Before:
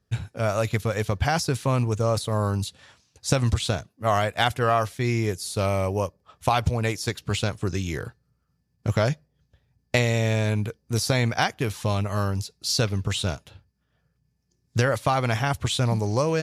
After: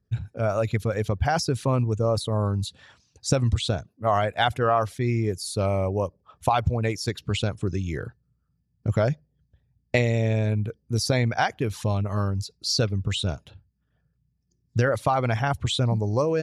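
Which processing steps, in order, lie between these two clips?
formant sharpening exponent 1.5

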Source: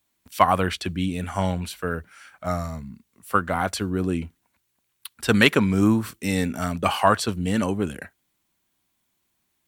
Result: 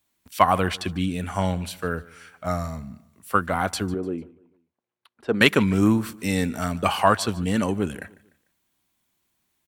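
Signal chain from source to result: 3.94–5.41 band-pass 460 Hz, Q 1.1; feedback echo 0.149 s, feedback 41%, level -21.5 dB

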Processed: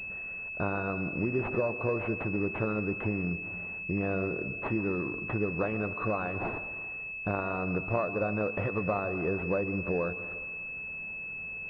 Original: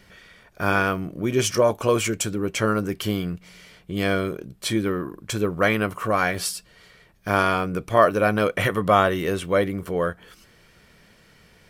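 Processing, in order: compressor 5:1, threshold -29 dBFS, peak gain reduction 16.5 dB; plate-style reverb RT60 1.5 s, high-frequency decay 0.85×, pre-delay 0.115 s, DRR 12.5 dB; pulse-width modulation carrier 2600 Hz; gain +1.5 dB

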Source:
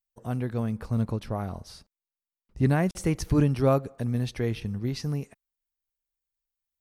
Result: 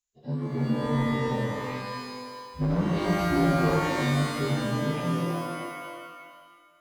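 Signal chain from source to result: inharmonic rescaling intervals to 77%; harmonic-percussive split percussive -9 dB; hard clip -23.5 dBFS, distortion -10 dB; shimmer reverb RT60 1.7 s, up +12 st, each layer -2 dB, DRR 1 dB

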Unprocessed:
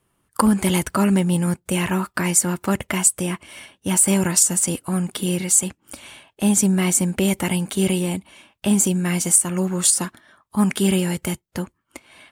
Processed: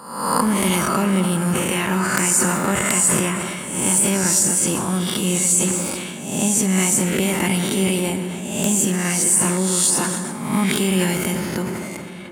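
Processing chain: spectral swells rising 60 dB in 0.80 s; HPF 78 Hz; low shelf 130 Hz -3.5 dB; compressor 2.5:1, threshold -18 dBFS, peak gain reduction 7.5 dB; wrapped overs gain 5 dB; plate-style reverb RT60 4.5 s, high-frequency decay 0.4×, DRR 7.5 dB; sustainer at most 27 dB/s; gain +1 dB

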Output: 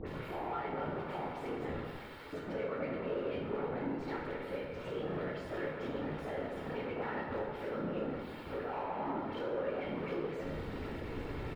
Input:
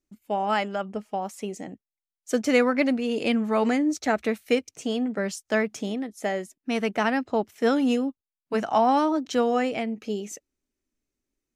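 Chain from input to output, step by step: zero-crossing step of -26 dBFS; HPF 40 Hz; notch 6000 Hz, Q 17; comb 2.2 ms, depth 65%; compressor, threshold -30 dBFS, peak gain reduction 17 dB; dispersion highs, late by 67 ms, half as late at 1600 Hz; whisperiser; soft clip -32.5 dBFS, distortion -9 dB; air absorption 450 m; plate-style reverb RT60 1.6 s, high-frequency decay 0.5×, DRR -2.5 dB; gain -4 dB

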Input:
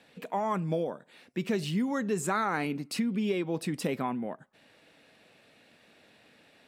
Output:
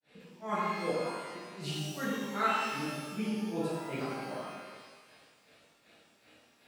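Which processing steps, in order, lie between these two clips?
grains 0.246 s, grains 2.6/s, spray 32 ms, pitch spread up and down by 0 st; shimmer reverb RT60 1.5 s, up +12 st, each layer -8 dB, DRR -9.5 dB; gain -7 dB

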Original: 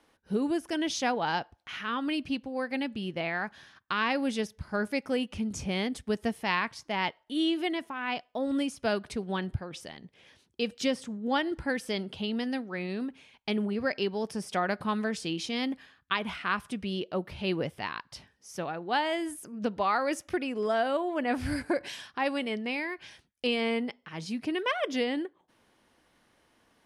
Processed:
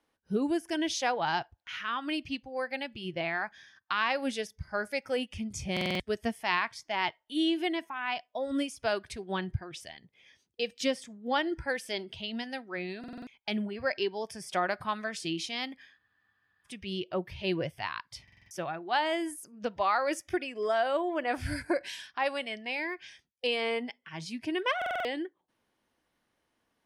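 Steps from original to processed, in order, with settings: spectral noise reduction 11 dB; stuck buffer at 5.72/12.99/18.23/24.77, samples 2048, times 5; spectral freeze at 15.99, 0.68 s

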